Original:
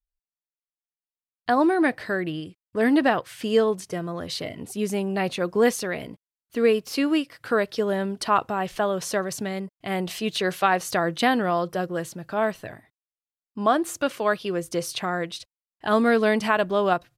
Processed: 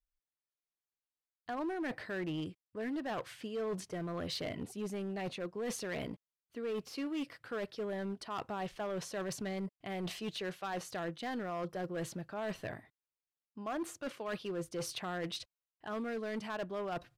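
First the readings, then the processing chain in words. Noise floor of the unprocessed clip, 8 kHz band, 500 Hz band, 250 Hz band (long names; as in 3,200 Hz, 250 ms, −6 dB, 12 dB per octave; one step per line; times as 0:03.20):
below −85 dBFS, −12.0 dB, −15.5 dB, −14.5 dB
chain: high-shelf EQ 7,000 Hz −9.5 dB
reversed playback
downward compressor 12 to 1, threshold −31 dBFS, peak gain reduction 17 dB
reversed playback
hard clipping −30.5 dBFS, distortion −14 dB
level −2.5 dB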